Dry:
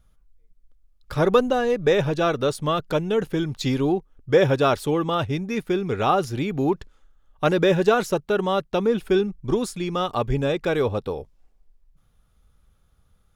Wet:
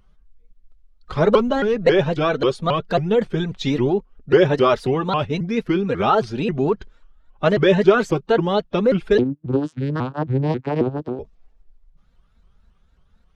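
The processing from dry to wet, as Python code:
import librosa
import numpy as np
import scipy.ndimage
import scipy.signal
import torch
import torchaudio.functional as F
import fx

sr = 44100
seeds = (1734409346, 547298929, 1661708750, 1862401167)

y = fx.spec_quant(x, sr, step_db=15)
y = scipy.signal.sosfilt(scipy.signal.butter(2, 4800.0, 'lowpass', fs=sr, output='sos'), y)
y = y + 0.46 * np.pad(y, (int(4.8 * sr / 1000.0), 0))[:len(y)]
y = fx.vocoder(y, sr, bands=8, carrier='saw', carrier_hz=140.0, at=(9.18, 11.19))
y = fx.vibrato_shape(y, sr, shape='saw_up', rate_hz=3.7, depth_cents=250.0)
y = y * 10.0 ** (2.5 / 20.0)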